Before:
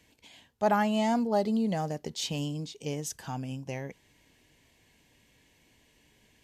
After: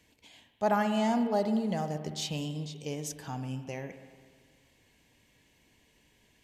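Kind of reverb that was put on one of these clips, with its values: spring tank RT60 1.7 s, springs 46/59 ms, chirp 65 ms, DRR 8.5 dB; gain -2 dB

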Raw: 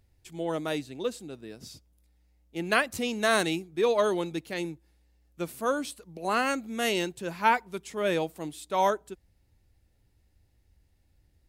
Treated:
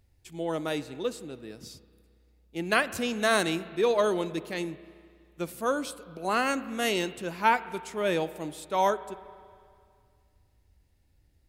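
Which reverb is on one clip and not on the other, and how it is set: spring tank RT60 2.2 s, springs 33/55 ms, chirp 25 ms, DRR 15 dB

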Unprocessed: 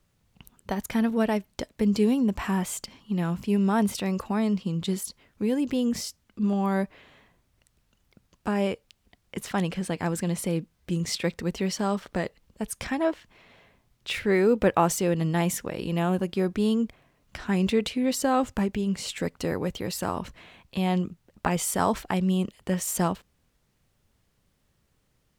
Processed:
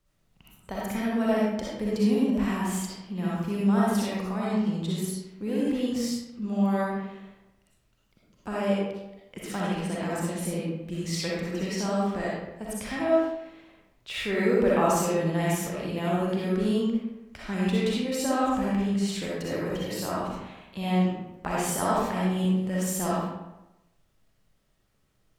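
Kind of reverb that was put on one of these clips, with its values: digital reverb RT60 0.96 s, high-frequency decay 0.65×, pre-delay 20 ms, DRR -6.5 dB; gain -7.5 dB

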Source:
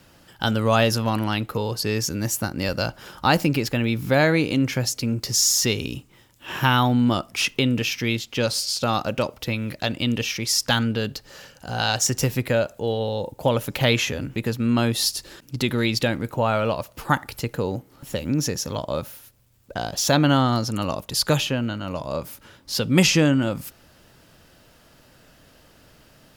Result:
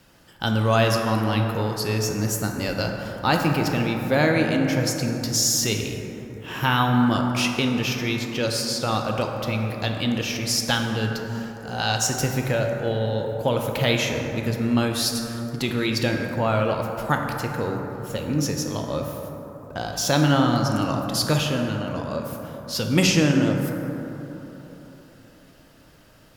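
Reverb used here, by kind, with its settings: plate-style reverb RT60 3.8 s, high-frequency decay 0.3×, DRR 2 dB; gain -2.5 dB

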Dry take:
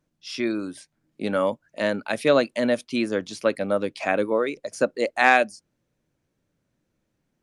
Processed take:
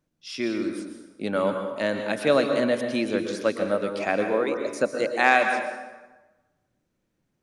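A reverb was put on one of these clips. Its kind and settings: plate-style reverb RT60 1.2 s, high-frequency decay 0.7×, pre-delay 0.105 s, DRR 5 dB; gain -2 dB

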